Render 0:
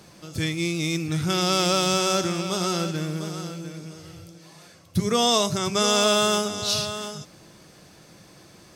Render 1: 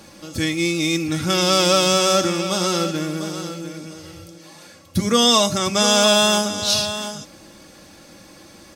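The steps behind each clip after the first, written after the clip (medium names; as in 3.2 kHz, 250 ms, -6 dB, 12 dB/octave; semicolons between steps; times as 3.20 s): comb 3.6 ms, depth 56%; trim +4.5 dB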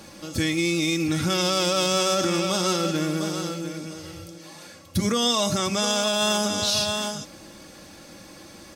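peak limiter -13.5 dBFS, peak gain reduction 11 dB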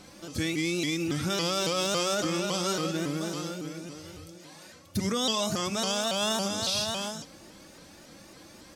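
vibrato with a chosen wave saw up 3.6 Hz, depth 160 cents; trim -5.5 dB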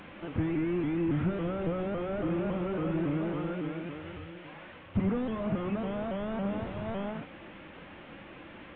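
one-bit delta coder 16 kbps, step -46.5 dBFS; trim +2.5 dB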